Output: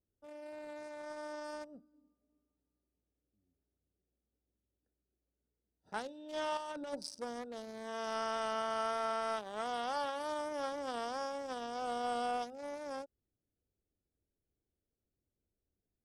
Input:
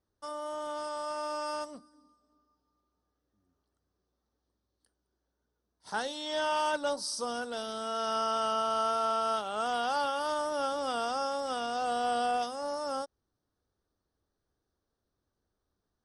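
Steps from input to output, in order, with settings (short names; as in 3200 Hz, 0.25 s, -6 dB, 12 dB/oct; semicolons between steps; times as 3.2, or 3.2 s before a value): Wiener smoothing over 41 samples; 6.57–7.09 negative-ratio compressor -35 dBFS, ratio -0.5; gain -4.5 dB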